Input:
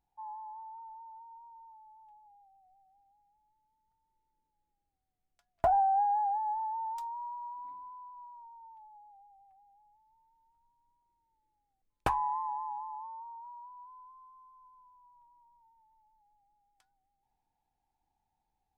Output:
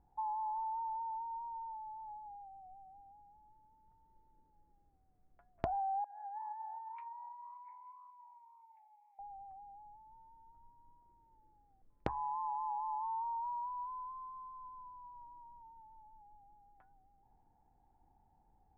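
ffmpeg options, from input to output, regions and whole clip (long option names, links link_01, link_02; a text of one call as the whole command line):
ffmpeg -i in.wav -filter_complex "[0:a]asettb=1/sr,asplit=3[link_01][link_02][link_03];[link_01]atrim=end=6.044[link_04];[link_02]atrim=start=6.04:end=9.19,asetpts=PTS-STARTPTS,afade=type=in:duration=0.004:curve=qsin,afade=type=out:start_time=3.146:duration=0.004:curve=qsin,highpass=frequency=2300:width_type=q:width=9.2,flanger=delay=6.3:depth=7.8:regen=59:speed=1.9:shape=sinusoidal[link_05];[link_03]atrim=start=9.186[link_06];[link_04][link_05]acrossfade=duration=0.004:curve1=hsin:curve2=qsin[link_07];[link_07][link_06]acrossfade=duration=0.004:curve1=qsin:curve2=hsin,lowpass=frequency=1900:width=0.5412,lowpass=frequency=1900:width=1.3066,tiltshelf=frequency=1300:gain=8.5,acompressor=threshold=-42dB:ratio=10,volume=6.5dB" out.wav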